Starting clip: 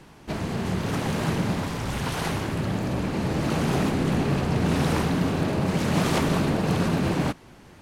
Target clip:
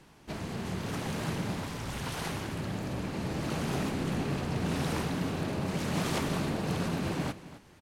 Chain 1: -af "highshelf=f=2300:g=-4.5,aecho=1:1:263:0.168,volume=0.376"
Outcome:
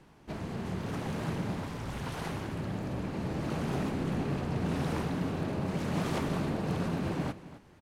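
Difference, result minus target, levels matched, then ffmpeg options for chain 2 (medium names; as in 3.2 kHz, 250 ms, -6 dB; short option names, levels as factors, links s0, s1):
4 kHz band -5.0 dB
-af "highshelf=f=2300:g=3.5,aecho=1:1:263:0.168,volume=0.376"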